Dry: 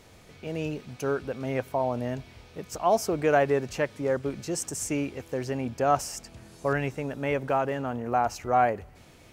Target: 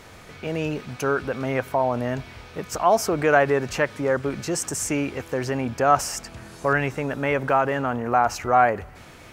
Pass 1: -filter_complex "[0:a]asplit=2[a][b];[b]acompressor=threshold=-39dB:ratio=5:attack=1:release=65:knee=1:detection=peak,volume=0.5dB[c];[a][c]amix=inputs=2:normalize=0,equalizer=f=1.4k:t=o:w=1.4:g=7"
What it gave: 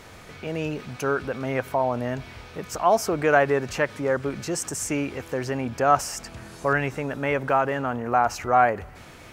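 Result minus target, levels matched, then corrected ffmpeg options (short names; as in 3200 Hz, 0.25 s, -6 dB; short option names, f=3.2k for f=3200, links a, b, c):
compressor: peak gain reduction +7 dB
-filter_complex "[0:a]asplit=2[a][b];[b]acompressor=threshold=-30.5dB:ratio=5:attack=1:release=65:knee=1:detection=peak,volume=0.5dB[c];[a][c]amix=inputs=2:normalize=0,equalizer=f=1.4k:t=o:w=1.4:g=7"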